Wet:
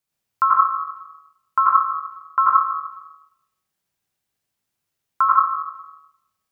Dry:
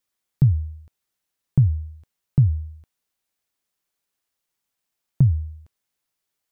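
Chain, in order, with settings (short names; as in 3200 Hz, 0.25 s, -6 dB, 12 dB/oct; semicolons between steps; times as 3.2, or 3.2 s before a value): bell 430 Hz +4.5 dB 0.28 oct; notch 490 Hz, Q 12; plate-style reverb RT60 0.89 s, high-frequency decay 0.65×, pre-delay 75 ms, DRR -3 dB; ring modulator 1200 Hz; bell 130 Hz +9.5 dB 1.3 oct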